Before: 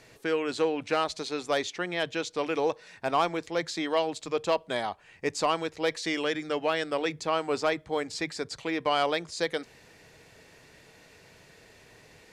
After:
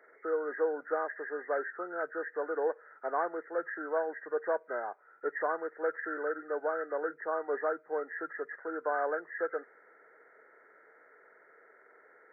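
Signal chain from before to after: knee-point frequency compression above 1.2 kHz 4:1; ladder high-pass 350 Hz, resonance 40%

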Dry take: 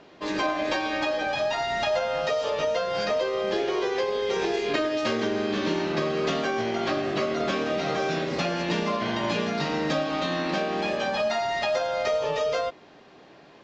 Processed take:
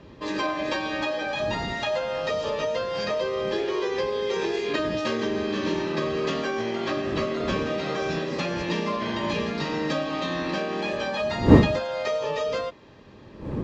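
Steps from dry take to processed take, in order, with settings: wind noise 270 Hz -30 dBFS; comb of notches 720 Hz

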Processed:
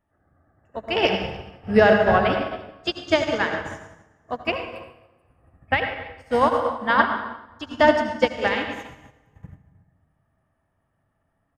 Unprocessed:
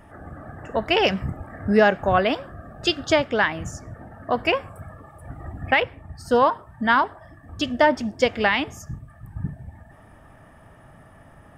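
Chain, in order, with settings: delay 276 ms -12 dB; reverberation RT60 2.1 s, pre-delay 63 ms, DRR -0.5 dB; upward expansion 2.5:1, over -32 dBFS; trim +2 dB

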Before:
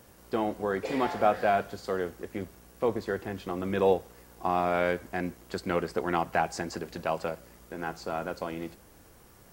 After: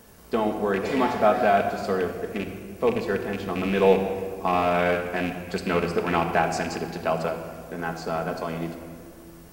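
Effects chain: rattle on loud lows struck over -33 dBFS, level -26 dBFS; simulated room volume 3800 m³, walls mixed, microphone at 1.5 m; trim +3.5 dB

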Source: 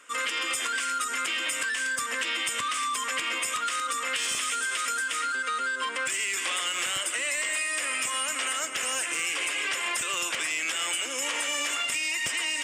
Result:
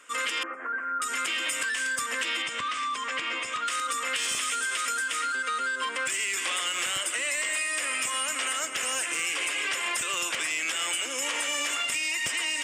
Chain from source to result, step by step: 0.43–1.02 s: elliptic band-pass 220–1600 Hz, stop band 40 dB; 2.42–3.68 s: distance through air 99 m

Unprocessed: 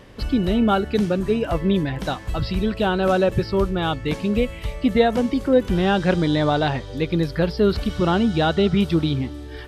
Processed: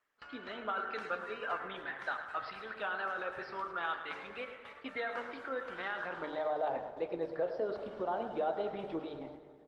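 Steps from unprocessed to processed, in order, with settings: gate with hold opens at -21 dBFS; 4.41–4.96 s: high-pass 90 Hz 12 dB/octave; bass shelf 250 Hz -11.5 dB; de-hum 151.5 Hz, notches 37; band-pass sweep 1.4 kHz -> 650 Hz, 5.90–6.54 s; peak limiter -25 dBFS, peak gain reduction 11 dB; harmonic-percussive split harmonic -4 dB; wow and flutter 49 cents; feedback delay 108 ms, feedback 53%, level -12 dB; on a send at -7 dB: reverberation RT60 1.9 s, pre-delay 5 ms; on the sum: Opus 20 kbps 48 kHz

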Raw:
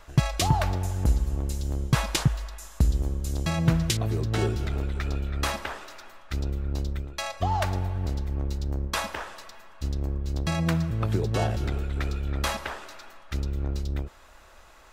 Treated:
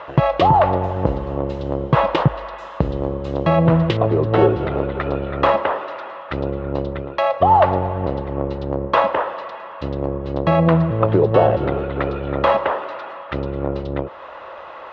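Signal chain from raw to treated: cabinet simulation 170–2500 Hz, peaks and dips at 230 Hz -8 dB, 540 Hz +9 dB, 1 kHz +4 dB, 1.6 kHz -7 dB, 2.3 kHz -9 dB; loudness maximiser +16.5 dB; tape noise reduction on one side only encoder only; trim -2.5 dB

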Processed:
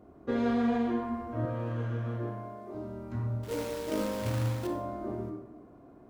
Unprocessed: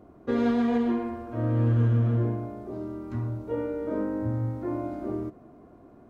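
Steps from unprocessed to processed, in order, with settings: 1.45–2.75 s: high-pass 430 Hz 6 dB/octave; 3.43–4.67 s: companded quantiser 4-bit; on a send: reverberation RT60 0.90 s, pre-delay 18 ms, DRR 4 dB; on the sum: trim -3.5 dB

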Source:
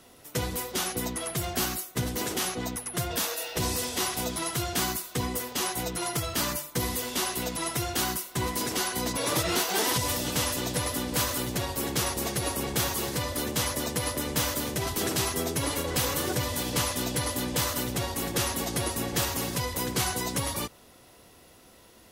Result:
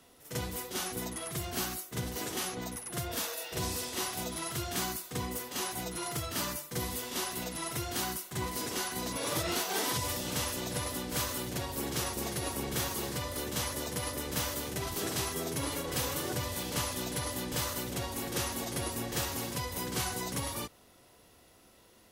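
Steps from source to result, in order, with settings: reverse echo 43 ms -7 dB; trim -6.5 dB

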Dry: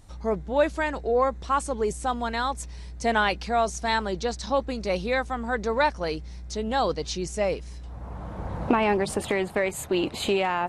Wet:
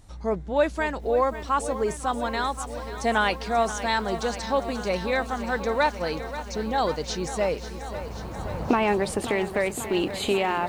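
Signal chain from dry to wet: 6.31–6.78 s: resonances exaggerated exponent 1.5; bit-crushed delay 535 ms, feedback 80%, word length 8-bit, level -12.5 dB

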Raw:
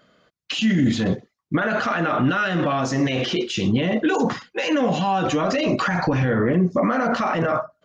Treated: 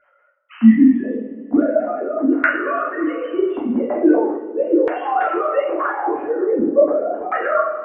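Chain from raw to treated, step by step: formants replaced by sine waves; two-slope reverb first 0.5 s, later 3.2 s, from -18 dB, DRR -6.5 dB; LFO low-pass saw down 0.41 Hz 440–1800 Hz; trim -5.5 dB

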